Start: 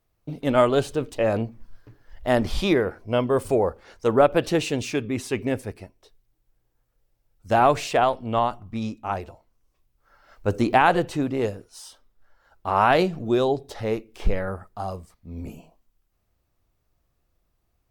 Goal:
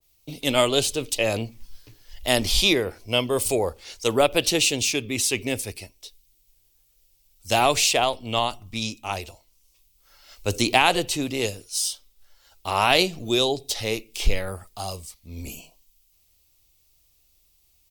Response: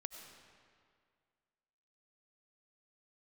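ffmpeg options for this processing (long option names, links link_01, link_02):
-filter_complex "[0:a]acrossover=split=170[link_01][link_02];[link_01]aecho=1:1:2.5:0.68[link_03];[link_02]aexciter=amount=9:drive=3:freq=2300[link_04];[link_03][link_04]amix=inputs=2:normalize=0,adynamicequalizer=threshold=0.0355:dfrequency=1600:dqfactor=0.7:tfrequency=1600:tqfactor=0.7:attack=5:release=100:ratio=0.375:range=3:mode=cutabove:tftype=highshelf,volume=-2.5dB"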